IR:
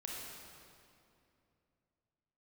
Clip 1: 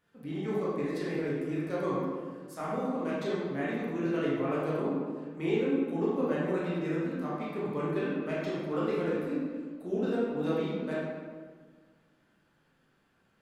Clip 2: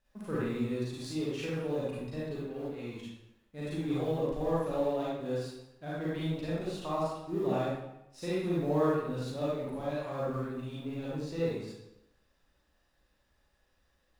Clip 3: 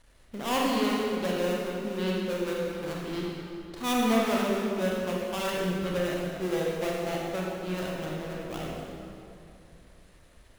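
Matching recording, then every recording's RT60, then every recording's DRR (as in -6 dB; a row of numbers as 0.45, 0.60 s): 3; 1.6, 0.85, 2.7 s; -8.0, -8.5, -3.5 dB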